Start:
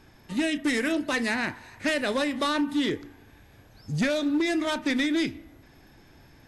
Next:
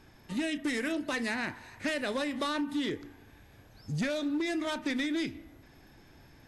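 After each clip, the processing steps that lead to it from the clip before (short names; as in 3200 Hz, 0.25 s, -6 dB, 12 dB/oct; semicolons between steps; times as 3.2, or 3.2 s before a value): compressor 2:1, threshold -29 dBFS, peak gain reduction 4.5 dB; gain -2.5 dB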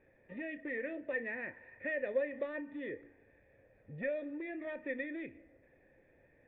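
vocal tract filter e; gain +5 dB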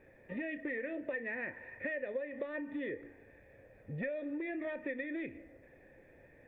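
compressor 6:1, threshold -42 dBFS, peak gain reduction 14 dB; gain +6.5 dB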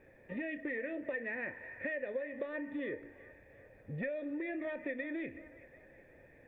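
band-limited delay 0.372 s, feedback 48%, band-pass 1200 Hz, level -14 dB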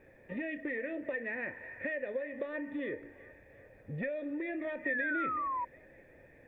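painted sound fall, 4.85–5.65, 950–1900 Hz -36 dBFS; gain +1.5 dB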